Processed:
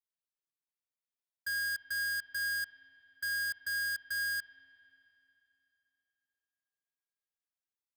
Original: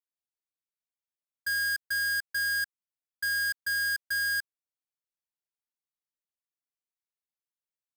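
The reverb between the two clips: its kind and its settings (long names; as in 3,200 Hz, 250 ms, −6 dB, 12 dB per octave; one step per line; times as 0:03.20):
spring reverb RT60 3.2 s, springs 41/59 ms, chirp 45 ms, DRR 12.5 dB
level −5.5 dB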